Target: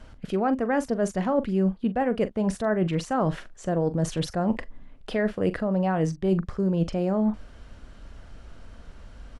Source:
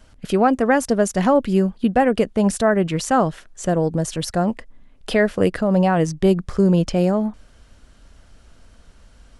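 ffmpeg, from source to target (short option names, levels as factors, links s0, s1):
-filter_complex "[0:a]lowpass=f=2500:p=1,areverse,acompressor=threshold=0.0501:ratio=6,areverse,asplit=2[s0][s1];[s1]adelay=42,volume=0.211[s2];[s0][s2]amix=inputs=2:normalize=0,volume=1.58"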